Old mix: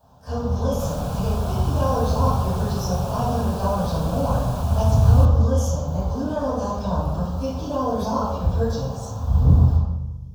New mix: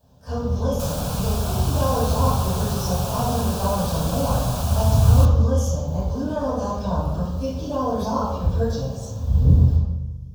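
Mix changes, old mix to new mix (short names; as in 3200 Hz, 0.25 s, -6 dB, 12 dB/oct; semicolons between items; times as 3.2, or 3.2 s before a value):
first sound: add band shelf 990 Hz -10 dB 1.3 oct; second sound: add high shelf 2100 Hz +10.5 dB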